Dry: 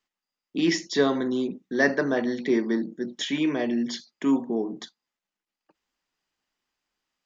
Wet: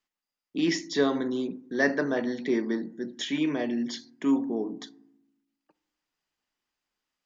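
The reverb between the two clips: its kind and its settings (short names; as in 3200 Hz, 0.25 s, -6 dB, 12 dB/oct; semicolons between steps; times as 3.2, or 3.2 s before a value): FDN reverb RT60 0.81 s, low-frequency decay 1.5×, high-frequency decay 0.35×, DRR 17.5 dB; gain -3 dB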